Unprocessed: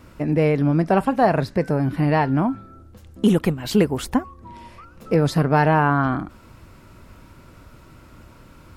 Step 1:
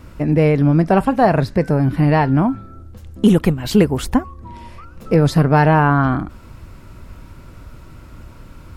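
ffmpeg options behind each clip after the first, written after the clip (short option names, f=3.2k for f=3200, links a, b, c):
-af "lowshelf=f=99:g=9.5,volume=3dB"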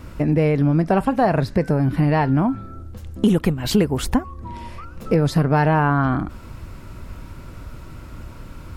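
-af "acompressor=threshold=-20dB:ratio=2,volume=2dB"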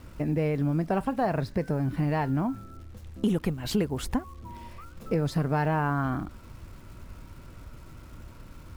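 -af "acrusher=bits=9:dc=4:mix=0:aa=0.000001,volume=-9dB" -ar 44100 -c:a adpcm_ima_wav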